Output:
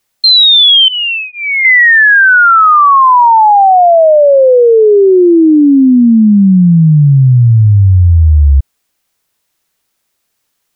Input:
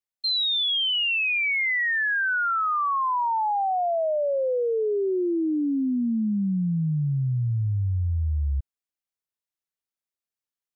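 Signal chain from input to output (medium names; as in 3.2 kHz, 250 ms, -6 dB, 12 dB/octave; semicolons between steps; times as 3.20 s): 0.88–1.65 s: Savitzky-Golay filter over 65 samples; loudness maximiser +27.5 dB; trim -1 dB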